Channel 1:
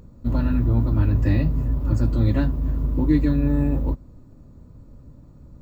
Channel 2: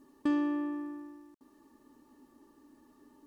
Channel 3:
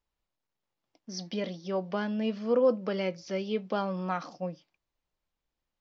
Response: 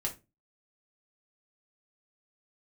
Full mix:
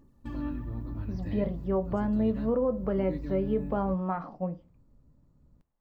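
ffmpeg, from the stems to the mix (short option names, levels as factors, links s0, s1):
-filter_complex "[0:a]volume=0.126,asplit=2[s0][s1];[s1]volume=0.178[s2];[1:a]aphaser=in_gain=1:out_gain=1:delay=3.4:decay=0.69:speed=1.1:type=sinusoidal,volume=0.211[s3];[2:a]lowpass=1100,volume=1.06,asplit=2[s4][s5];[s5]volume=0.422[s6];[3:a]atrim=start_sample=2205[s7];[s2][s6]amix=inputs=2:normalize=0[s8];[s8][s7]afir=irnorm=-1:irlink=0[s9];[s0][s3][s4][s9]amix=inputs=4:normalize=0,alimiter=limit=0.119:level=0:latency=1:release=175"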